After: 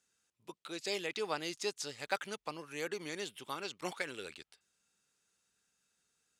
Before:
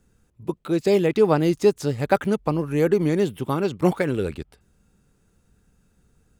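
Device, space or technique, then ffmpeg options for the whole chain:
piezo pickup straight into a mixer: -af "lowpass=5500,aderivative,volume=3.5dB"

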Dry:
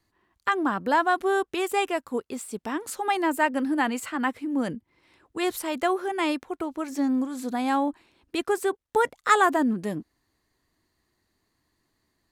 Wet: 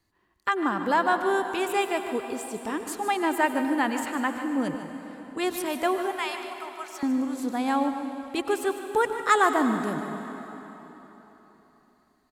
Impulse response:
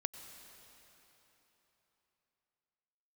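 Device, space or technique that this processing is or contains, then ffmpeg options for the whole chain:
cave: -filter_complex "[0:a]asettb=1/sr,asplit=3[link_01][link_02][link_03];[link_01]atrim=end=6.114[link_04];[link_02]atrim=start=6.11:end=7.03,asetpts=PTS-STARTPTS,afade=type=in:duration=0.004:curve=qsin,afade=type=out:start_time=0.916:duration=0.004:curve=qsin,highpass=frequency=830:width=0.5412,highpass=frequency=830:width=1.3066[link_05];[link_03]atrim=start=7.026[link_06];[link_04][link_05]acrossfade=duration=0.004:curve1=hsin:curve2=qsin[link_07];[link_07][link_06]acrossfade=duration=0.004:curve1=qsin:curve2=hsin,aecho=1:1:150:0.237[link_08];[1:a]atrim=start_sample=2205[link_09];[link_08][link_09]afir=irnorm=-1:irlink=0"

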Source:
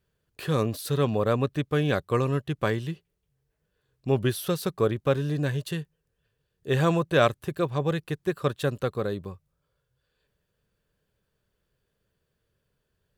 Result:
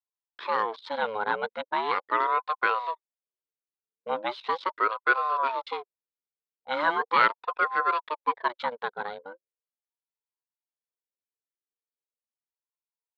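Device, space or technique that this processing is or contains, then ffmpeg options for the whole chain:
voice changer toy: -filter_complex "[0:a]asettb=1/sr,asplit=3[link_01][link_02][link_03];[link_01]atrim=end=4.734[link_04];[link_02]atrim=start=4.73:end=5.16,asetpts=PTS-STARTPTS,afade=type=in:duration=0.004:curve=qsin,afade=type=out:start_time=0.426:duration=0.004:curve=qsin,highpass=frequency=240:poles=1[link_05];[link_03]atrim=start=5.156[link_06];[link_04][link_05]acrossfade=duration=0.004:curve1=hsin:curve2=qsin[link_07];[link_07][link_06]acrossfade=duration=0.004:curve1=qsin:curve2=hsin,aeval=exprs='val(0)*sin(2*PI*610*n/s+610*0.5/0.39*sin(2*PI*0.39*n/s))':channel_layout=same,highpass=460,equalizer=frequency=480:width_type=q:width=4:gain=7,equalizer=frequency=710:width_type=q:width=4:gain=-5,equalizer=frequency=1000:width_type=q:width=4:gain=8,equalizer=frequency=1500:width_type=q:width=4:gain=8,equalizer=frequency=2200:width_type=q:width=4:gain=3,equalizer=frequency=3800:width_type=q:width=4:gain=7,lowpass=frequency=4300:width=0.5412,lowpass=frequency=4300:width=1.3066,anlmdn=0.1,equalizer=frequency=1400:width=1.5:gain=2.5,volume=-2.5dB"

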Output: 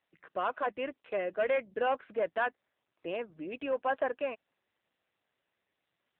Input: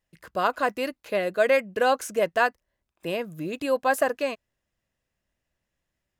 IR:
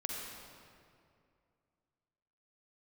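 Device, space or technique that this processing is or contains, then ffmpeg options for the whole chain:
telephone: -filter_complex "[0:a]asettb=1/sr,asplit=3[link_01][link_02][link_03];[link_01]atrim=end=3.194[link_04];[link_02]atrim=start=3.19:end=3.65,asetpts=PTS-STARTPTS,afade=type=in:duration=0.004:curve=qsin,afade=type=out:start_time=0.456:duration=0.004:curve=qsin,highshelf=frequency=2700:gain=5[link_05];[link_03]atrim=start=3.646[link_06];[link_04][link_05]acrossfade=duration=0.004:curve1=hsin:curve2=qsin[link_07];[link_07][link_06]acrossfade=duration=0.004:curve1=qsin:curve2=hsin,highpass=280,lowpass=3100,asoftclip=type=tanh:threshold=-16.5dB,volume=-5dB" -ar 8000 -c:a libopencore_amrnb -b:a 7400

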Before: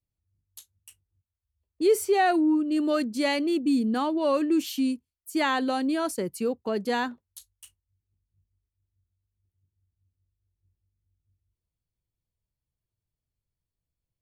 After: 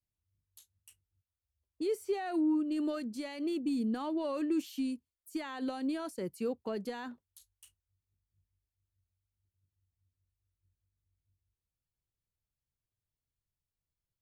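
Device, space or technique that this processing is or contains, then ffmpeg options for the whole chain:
de-esser from a sidechain: -filter_complex "[0:a]asplit=2[link_01][link_02];[link_02]highpass=frequency=6700:poles=1,apad=whole_len=627095[link_03];[link_01][link_03]sidechaincompress=threshold=-42dB:ratio=8:attack=0.88:release=76,volume=-6dB"

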